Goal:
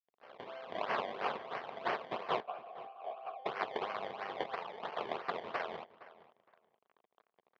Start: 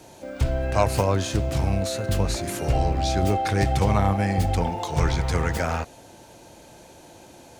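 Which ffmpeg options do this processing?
-filter_complex "[0:a]aeval=exprs='sgn(val(0))*max(abs(val(0))-0.01,0)':c=same,aderivative,acrusher=samples=23:mix=1:aa=0.000001:lfo=1:lforange=23:lforate=3,asettb=1/sr,asplit=3[s0][s1][s2];[s0]atrim=end=2.404[s3];[s1]atrim=start=2.4:end=3.46,asetpts=PTS-STARTPTS,afade=t=in:d=0.004:c=qsin,afade=t=out:st=1.056:d=0.004:c=qsin,asplit=3[s4][s5][s6];[s4]bandpass=f=730:t=q:w=8,volume=1[s7];[s5]bandpass=f=1090:t=q:w=8,volume=0.501[s8];[s6]bandpass=f=2440:t=q:w=8,volume=0.355[s9];[s7][s8][s9]amix=inputs=3:normalize=0[s10];[s2]atrim=start=3.456[s11];[s3][s10]acrossfade=d=0.004:c1=hsin:c2=qsin[s12];[s12][s11]acrossfade=d=0.004:c1=qsin:c2=hsin,highpass=280,equalizer=f=290:t=q:w=4:g=-9,equalizer=f=430:t=q:w=4:g=4,equalizer=f=700:t=q:w=4:g=5,equalizer=f=1100:t=q:w=4:g=5,equalizer=f=3200:t=q:w=4:g=4,lowpass=f=3600:w=0.5412,lowpass=f=3600:w=1.3066,asplit=2[s13][s14];[s14]adelay=465,lowpass=f=2800:p=1,volume=0.141,asplit=2[s15][s16];[s16]adelay=465,lowpass=f=2800:p=1,volume=0.19[s17];[s15][s17]amix=inputs=2:normalize=0[s18];[s13][s18]amix=inputs=2:normalize=0,volume=1.12"

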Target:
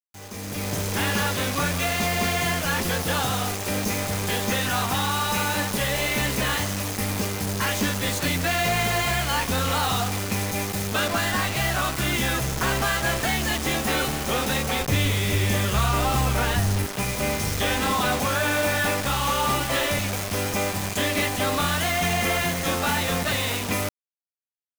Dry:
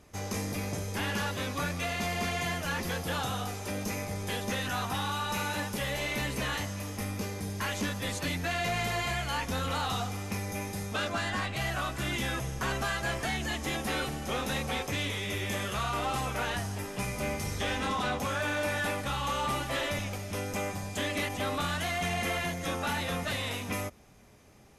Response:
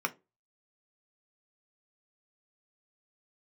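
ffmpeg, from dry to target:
-filter_complex "[0:a]acrusher=bits=5:mix=0:aa=0.000001,asettb=1/sr,asplit=3[s0][s1][s2];[s0]atrim=end=14.814[s3];[s1]atrim=start=14.81:end=16.87,asetpts=PTS-STARTPTS,afade=t=in:d=0.004:c=qsin,afade=t=out:st=2.056:d=0.004:c=qsin,lowshelf=f=160:g=10.5[s4];[s2]atrim=start=16.866[s5];[s3][s4]acrossfade=d=0.004:c1=hsin:c2=qsin[s6];[s6][s5]acrossfade=d=0.004:c1=qsin:c2=hsin,dynaudnorm=f=160:g=7:m=5.62,volume=0.422"

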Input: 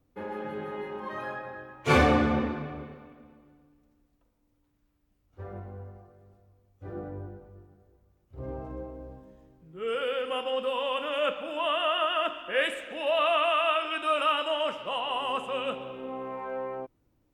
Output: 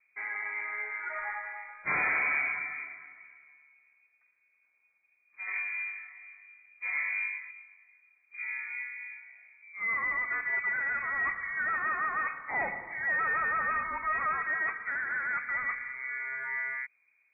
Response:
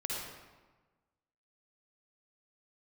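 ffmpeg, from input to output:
-filter_complex "[0:a]asettb=1/sr,asplit=3[s0][s1][s2];[s0]atrim=end=5.474[s3];[s1]atrim=start=5.47:end=7.51,asetpts=PTS-STARTPTS,afade=t=in:d=0.004:c=qsin,afade=t=out:st=2.036:d=0.004:c=qsin,acontrast=59[s4];[s2]atrim=start=7.506[s5];[s3][s4]acrossfade=d=0.004:c1=hsin:c2=qsin[s6];[s6][s5]acrossfade=d=0.004:c1=qsin:c2=hsin,asoftclip=type=hard:threshold=0.0473,lowpass=f=2100:t=q:w=0.5098,lowpass=f=2100:t=q:w=0.6013,lowpass=f=2100:t=q:w=0.9,lowpass=f=2100:t=q:w=2.563,afreqshift=-2500"

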